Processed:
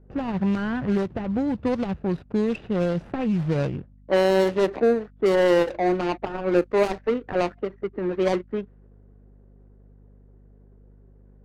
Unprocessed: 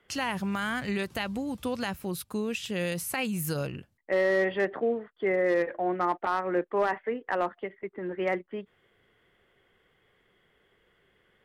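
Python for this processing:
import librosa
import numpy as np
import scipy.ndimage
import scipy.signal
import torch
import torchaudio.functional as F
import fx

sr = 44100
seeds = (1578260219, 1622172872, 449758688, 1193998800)

y = scipy.signal.medfilt(x, 41)
y = fx.env_lowpass(y, sr, base_hz=990.0, full_db=-24.0)
y = fx.add_hum(y, sr, base_hz=50, snr_db=27)
y = y * 10.0 ** (9.0 / 20.0)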